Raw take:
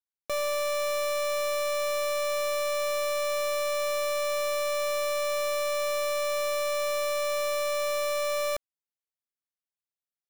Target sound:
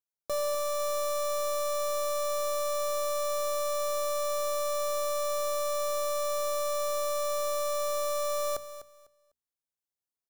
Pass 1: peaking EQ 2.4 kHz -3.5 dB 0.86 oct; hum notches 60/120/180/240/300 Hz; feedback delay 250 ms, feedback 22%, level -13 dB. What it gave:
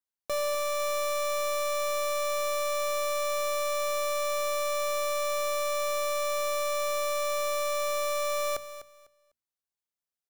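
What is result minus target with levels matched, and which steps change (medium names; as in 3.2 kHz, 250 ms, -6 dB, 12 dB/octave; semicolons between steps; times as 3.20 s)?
2 kHz band +7.5 dB
change: peaking EQ 2.4 kHz -13.5 dB 0.86 oct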